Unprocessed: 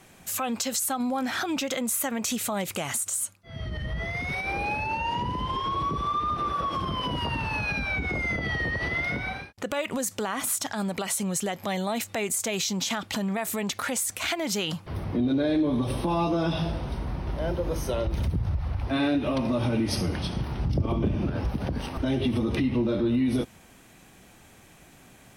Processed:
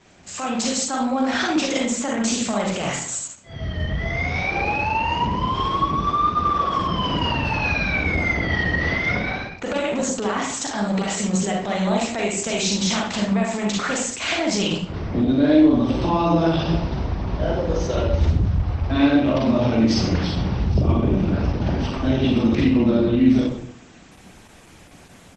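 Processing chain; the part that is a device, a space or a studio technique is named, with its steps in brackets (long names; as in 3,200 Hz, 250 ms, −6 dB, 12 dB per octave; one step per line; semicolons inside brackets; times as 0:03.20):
speakerphone in a meeting room (convolution reverb RT60 0.60 s, pre-delay 35 ms, DRR −1.5 dB; far-end echo of a speakerphone 110 ms, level −20 dB; automatic gain control gain up to 3.5 dB; Opus 12 kbit/s 48,000 Hz)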